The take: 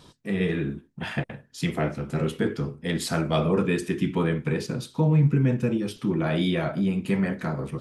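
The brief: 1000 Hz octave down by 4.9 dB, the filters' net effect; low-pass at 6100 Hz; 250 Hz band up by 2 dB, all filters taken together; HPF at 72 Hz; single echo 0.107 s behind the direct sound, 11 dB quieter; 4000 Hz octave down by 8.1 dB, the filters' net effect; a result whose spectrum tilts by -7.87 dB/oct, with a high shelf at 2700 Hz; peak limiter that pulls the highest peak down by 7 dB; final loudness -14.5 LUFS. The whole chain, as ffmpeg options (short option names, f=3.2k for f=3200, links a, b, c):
-af "highpass=72,lowpass=6.1k,equalizer=f=250:t=o:g=3.5,equalizer=f=1k:t=o:g=-6,highshelf=f=2.7k:g=-6,equalizer=f=4k:t=o:g=-4.5,alimiter=limit=-17.5dB:level=0:latency=1,aecho=1:1:107:0.282,volume=13dB"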